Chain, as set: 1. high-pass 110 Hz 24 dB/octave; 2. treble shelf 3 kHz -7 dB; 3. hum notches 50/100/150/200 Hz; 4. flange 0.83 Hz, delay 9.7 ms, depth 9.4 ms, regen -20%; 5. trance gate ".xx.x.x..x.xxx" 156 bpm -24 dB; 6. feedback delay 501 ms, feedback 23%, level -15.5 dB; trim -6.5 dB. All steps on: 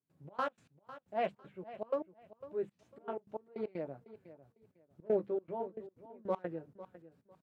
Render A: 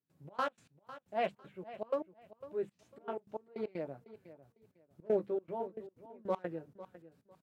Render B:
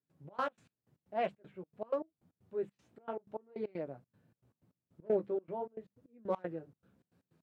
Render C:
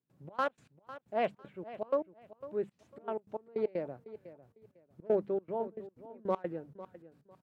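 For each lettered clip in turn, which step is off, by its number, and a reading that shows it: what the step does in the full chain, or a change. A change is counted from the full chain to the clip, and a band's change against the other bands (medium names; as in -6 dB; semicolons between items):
2, 2 kHz band +2.0 dB; 6, momentary loudness spread change -2 LU; 4, crest factor change -1.5 dB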